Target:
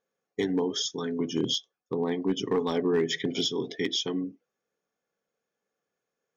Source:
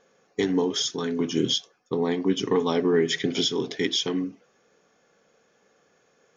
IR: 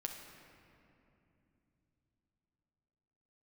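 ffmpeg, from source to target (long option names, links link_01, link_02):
-af "afftdn=noise_reduction=18:noise_floor=-39,asoftclip=type=hard:threshold=-14.5dB,volume=-3.5dB"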